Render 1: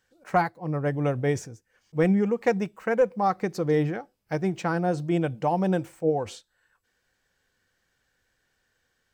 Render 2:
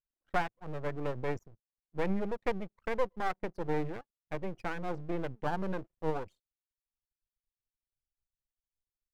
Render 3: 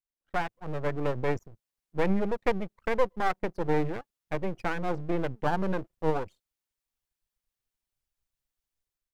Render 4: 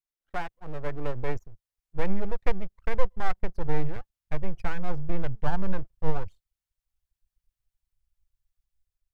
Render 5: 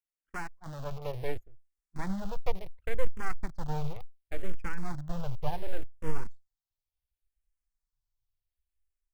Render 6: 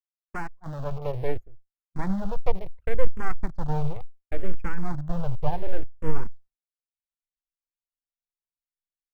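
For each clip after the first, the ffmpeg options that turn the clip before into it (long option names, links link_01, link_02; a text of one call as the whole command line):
ffmpeg -i in.wav -filter_complex "[0:a]anlmdn=6.31,acrossover=split=2900[link_01][link_02];[link_02]acompressor=threshold=-56dB:ratio=4:attack=1:release=60[link_03];[link_01][link_03]amix=inputs=2:normalize=0,aeval=exprs='max(val(0),0)':channel_layout=same,volume=-5dB" out.wav
ffmpeg -i in.wav -af "dynaudnorm=framelen=160:gausssize=5:maxgain=12.5dB,volume=-6.5dB" out.wav
ffmpeg -i in.wav -af "asubboost=boost=9.5:cutoff=93,volume=-3.5dB" out.wav
ffmpeg -i in.wav -filter_complex "[0:a]asplit=2[link_01][link_02];[link_02]acrusher=bits=4:mix=0:aa=0.000001,volume=-9.5dB[link_03];[link_01][link_03]amix=inputs=2:normalize=0,asplit=2[link_04][link_05];[link_05]afreqshift=-0.69[link_06];[link_04][link_06]amix=inputs=2:normalize=1,volume=-4.5dB" out.wav
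ffmpeg -i in.wav -af "agate=range=-33dB:threshold=-43dB:ratio=3:detection=peak,highshelf=frequency=2200:gain=-11.5,volume=7dB" out.wav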